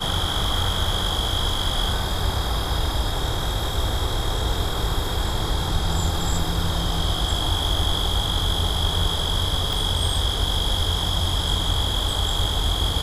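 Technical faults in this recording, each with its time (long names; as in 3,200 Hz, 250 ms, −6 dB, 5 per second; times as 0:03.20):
0:09.73: click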